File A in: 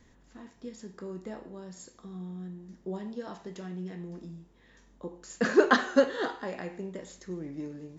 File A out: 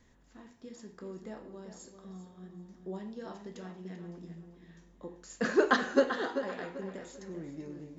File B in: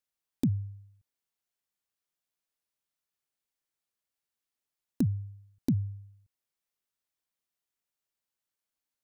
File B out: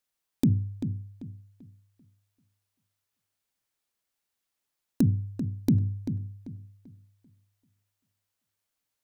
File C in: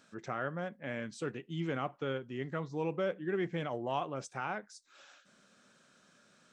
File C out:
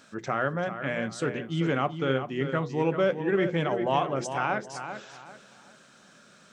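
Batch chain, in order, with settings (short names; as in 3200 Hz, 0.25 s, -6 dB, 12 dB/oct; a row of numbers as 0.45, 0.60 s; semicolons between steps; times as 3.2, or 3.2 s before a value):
notches 60/120/180/240/300/360/420/480 Hz; on a send: darkening echo 0.39 s, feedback 31%, low-pass 4200 Hz, level -9 dB; on the sum: normalise peaks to -12 dBFS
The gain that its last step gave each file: -3.5, +5.5, +9.0 dB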